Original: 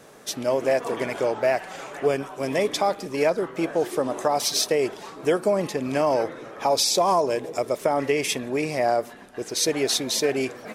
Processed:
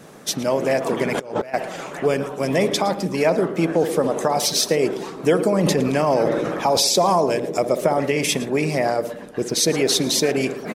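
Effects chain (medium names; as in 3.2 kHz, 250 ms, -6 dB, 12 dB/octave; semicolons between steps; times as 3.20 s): peaking EQ 170 Hz +12.5 dB 0.83 oct; delay 112 ms -17.5 dB; harmonic-percussive split percussive +7 dB; on a send: band-passed feedback delay 61 ms, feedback 72%, band-pass 360 Hz, level -10 dB; 1.14–1.54 s: on the sum: compressor with a negative ratio -25 dBFS, ratio -0.5; in parallel at +0.5 dB: peak limiter -10 dBFS, peak gain reduction 9 dB; 5.64–7.00 s: on the sum: decay stretcher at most 24 dB/s; trim -7 dB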